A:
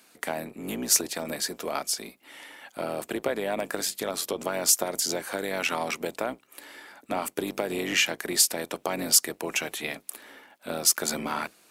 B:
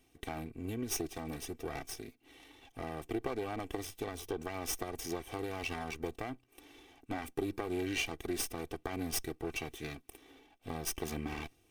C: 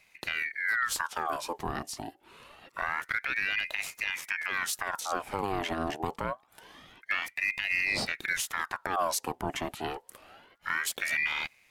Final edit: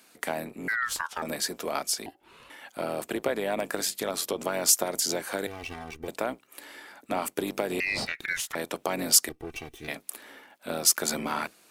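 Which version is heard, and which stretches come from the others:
A
0.68–1.22 from C
2.06–2.5 from C
5.47–6.08 from B
7.8–8.55 from C
9.29–9.88 from B

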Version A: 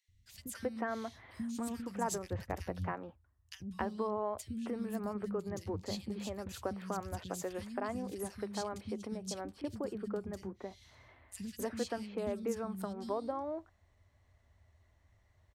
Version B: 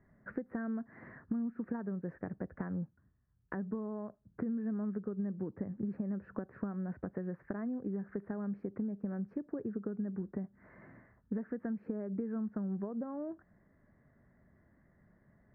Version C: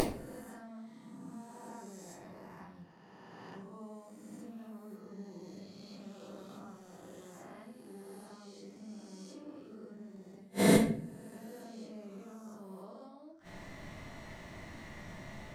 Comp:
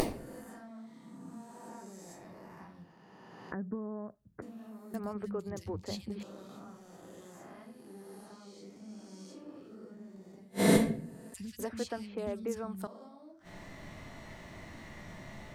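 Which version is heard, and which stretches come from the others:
C
3.52–4.42 from B
4.94–6.23 from A
11.34–12.87 from A

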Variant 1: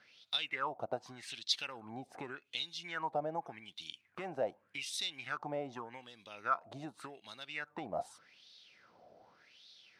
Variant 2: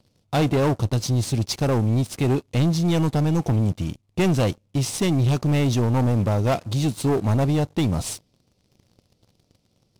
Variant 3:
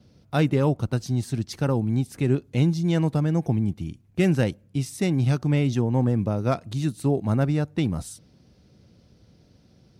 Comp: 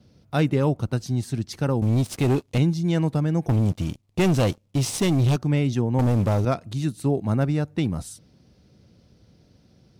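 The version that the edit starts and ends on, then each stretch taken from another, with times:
3
1.82–2.58 from 2
3.49–5.36 from 2
5.99–6.45 from 2
not used: 1

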